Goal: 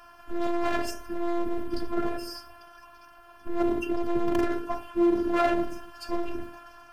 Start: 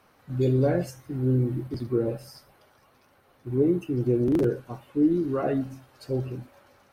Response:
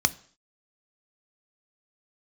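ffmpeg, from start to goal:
-filter_complex "[0:a]asplit=2[link_01][link_02];[1:a]atrim=start_sample=2205,asetrate=33075,aresample=44100,lowpass=2800[link_03];[link_02][link_03]afir=irnorm=-1:irlink=0,volume=-7dB[link_04];[link_01][link_04]amix=inputs=2:normalize=0,asoftclip=type=hard:threshold=-23.5dB,afftfilt=real='hypot(re,im)*cos(PI*b)':imag='0':win_size=512:overlap=0.75,volume=7dB"

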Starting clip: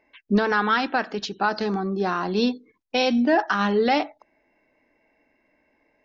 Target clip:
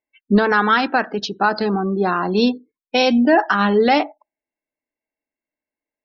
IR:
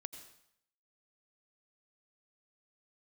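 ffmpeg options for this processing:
-af "afftdn=noise_reduction=31:noise_floor=-38,volume=5.5dB"

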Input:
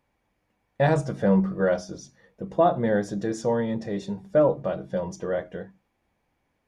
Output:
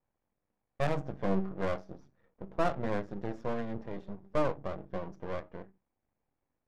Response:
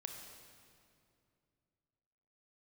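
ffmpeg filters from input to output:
-af "aeval=exprs='max(val(0),0)':channel_layout=same,adynamicsmooth=sensitivity=4.5:basefreq=1700,volume=-6dB"

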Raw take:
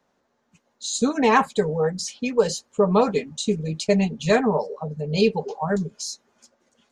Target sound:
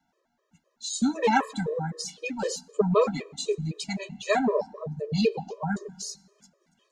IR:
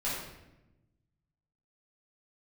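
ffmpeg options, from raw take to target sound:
-filter_complex "[0:a]asettb=1/sr,asplit=3[link_01][link_02][link_03];[link_01]atrim=end=3.764[link_04];[link_02]atrim=start=3.76:end=4.39,asetpts=PTS-STARTPTS,afade=type=in:duration=0.004:curve=qsin,afade=type=out:start_time=0.626:duration=0.004:curve=qsin,lowshelf=frequency=580:width_type=q:width=1.5:gain=-6.5[link_05];[link_03]atrim=start=4.386[link_06];[link_04][link_05]acrossfade=duration=0.004:curve1=hsin:curve2=qsin[link_07];[link_07][link_06]acrossfade=duration=0.004:curve1=qsin:curve2=hsin,asplit=2[link_08][link_09];[1:a]atrim=start_sample=2205,asetrate=31752,aresample=44100[link_10];[link_09][link_10]afir=irnorm=-1:irlink=0,volume=-29dB[link_11];[link_08][link_11]amix=inputs=2:normalize=0,afftfilt=real='re*gt(sin(2*PI*3.9*pts/sr)*(1-2*mod(floor(b*sr/1024/330),2)),0)':imag='im*gt(sin(2*PI*3.9*pts/sr)*(1-2*mod(floor(b*sr/1024/330),2)),0)':win_size=1024:overlap=0.75,volume=-1.5dB"

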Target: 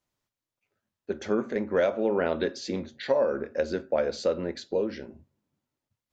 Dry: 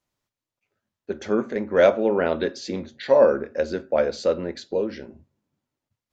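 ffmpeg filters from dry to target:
ffmpeg -i in.wav -af "acompressor=threshold=-18dB:ratio=10,volume=-2dB" out.wav

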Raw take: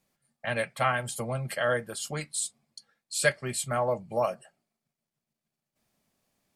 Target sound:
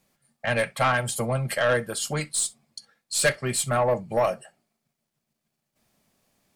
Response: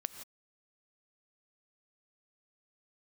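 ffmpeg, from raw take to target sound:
-filter_complex "[0:a]aeval=exprs='0.335*(cos(1*acos(clip(val(0)/0.335,-1,1)))-cos(1*PI/2))+0.0473*(cos(2*acos(clip(val(0)/0.335,-1,1)))-cos(2*PI/2))+0.0422*(cos(4*acos(clip(val(0)/0.335,-1,1)))-cos(4*PI/2))':channel_layout=same,asoftclip=type=tanh:threshold=-20.5dB[link_01];[1:a]atrim=start_sample=2205,atrim=end_sample=3087[link_02];[link_01][link_02]afir=irnorm=-1:irlink=0,volume=8dB"

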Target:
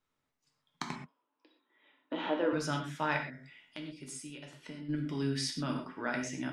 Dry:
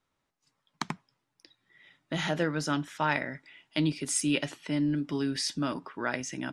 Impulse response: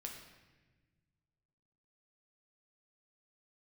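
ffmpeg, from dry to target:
-filter_complex "[0:a]asettb=1/sr,asplit=3[link_01][link_02][link_03];[link_01]atrim=end=0.924[link_04];[link_02]atrim=start=0.92:end=2.53,asetpts=PTS-STARTPTS,afade=type=in:duration=0.004:curve=qsin,afade=type=out:start_time=1.606:duration=0.004:curve=qsin,highpass=frequency=270:width=0.5412,highpass=frequency=270:width=1.3066,equalizer=frequency=280:width_type=q:width=4:gain=8,equalizer=frequency=510:width_type=q:width=4:gain=5,equalizer=frequency=990:width_type=q:width=4:gain=9,equalizer=frequency=2000:width_type=q:width=4:gain=-9,lowpass=frequency=3200:width=0.5412,lowpass=frequency=3200:width=1.3066[link_05];[link_03]atrim=start=2.526[link_06];[link_04][link_05]acrossfade=duration=0.004:curve1=hsin:curve2=qsin[link_07];[link_07][link_06]acrossfade=duration=0.004:curve1=qsin:curve2=hsin,asplit=3[link_08][link_09][link_10];[link_08]afade=type=out:start_time=3.16:duration=0.02[link_11];[link_09]acompressor=threshold=-38dB:ratio=8,afade=type=in:start_time=3.16:duration=0.02,afade=type=out:start_time=4.88:duration=0.02[link_12];[link_10]afade=type=in:start_time=4.88:duration=0.02[link_13];[link_11][link_12][link_13]amix=inputs=3:normalize=0[link_14];[1:a]atrim=start_sample=2205,atrim=end_sample=6174[link_15];[link_14][link_15]afir=irnorm=-1:irlink=0"

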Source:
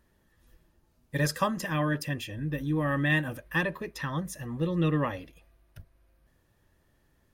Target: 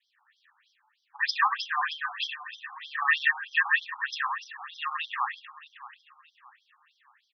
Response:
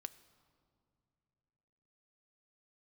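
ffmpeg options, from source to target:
-filter_complex "[0:a]asplit=2[link_01][link_02];[link_02]highpass=frequency=720:poles=1,volume=11dB,asoftclip=type=tanh:threshold=-13.5dB[link_03];[link_01][link_03]amix=inputs=2:normalize=0,lowpass=frequency=5800:poles=1,volume=-6dB,asplit=2[link_04][link_05];[link_05]aecho=0:1:622|1244|1866:0.141|0.0509|0.0183[link_06];[link_04][link_06]amix=inputs=2:normalize=0,adynamicequalizer=threshold=0.0158:dfrequency=550:dqfactor=0.72:tfrequency=550:tqfactor=0.72:attack=5:release=100:ratio=0.375:range=1.5:mode=cutabove:tftype=bell,asplit=2[link_07][link_08];[link_08]aecho=0:1:99.13|169.1:0.447|0.891[link_09];[link_07][link_09]amix=inputs=2:normalize=0,afftfilt=real='re*between(b*sr/1024,990*pow(4400/990,0.5+0.5*sin(2*PI*3.2*pts/sr))/1.41,990*pow(4400/990,0.5+0.5*sin(2*PI*3.2*pts/sr))*1.41)':imag='im*between(b*sr/1024,990*pow(4400/990,0.5+0.5*sin(2*PI*3.2*pts/sr))/1.41,990*pow(4400/990,0.5+0.5*sin(2*PI*3.2*pts/sr))*1.41)':win_size=1024:overlap=0.75,volume=3.5dB"

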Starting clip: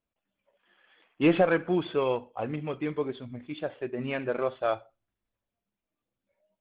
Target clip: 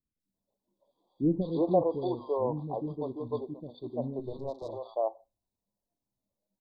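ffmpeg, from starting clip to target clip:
ffmpeg -i in.wav -filter_complex "[0:a]asettb=1/sr,asplit=3[link_01][link_02][link_03];[link_01]atrim=end=4.194[link_04];[link_02]atrim=start=4.19:end=4.63,asetpts=PTS-STARTPTS,afade=type=in:duration=0.004:curve=qsin,afade=type=out:start_time=0.436:duration=0.004:curve=qsin,aeval=exprs='(tanh(35.5*val(0)+0.7)-tanh(0.7))/35.5':channel_layout=same[link_05];[link_03]atrim=start=4.626[link_06];[link_04][link_05]acrossfade=duration=0.004:curve1=hsin:curve2=qsin[link_07];[link_07][link_06]acrossfade=duration=0.004:curve1=qsin:curve2=hsin,asuperstop=centerf=2000:order=20:qfactor=0.77,acrossover=split=360|1400[link_08][link_09][link_10];[link_10]adelay=200[link_11];[link_09]adelay=340[link_12];[link_08][link_12][link_11]amix=inputs=3:normalize=0" out.wav

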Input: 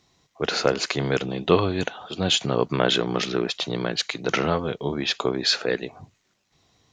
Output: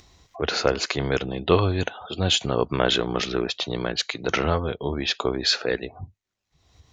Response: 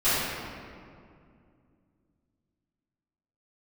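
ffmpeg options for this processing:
-af "afftdn=noise_reduction=30:noise_floor=-44,lowshelf=frequency=100:width_type=q:width=1.5:gain=10.5,acompressor=mode=upward:threshold=-27dB:ratio=2.5"

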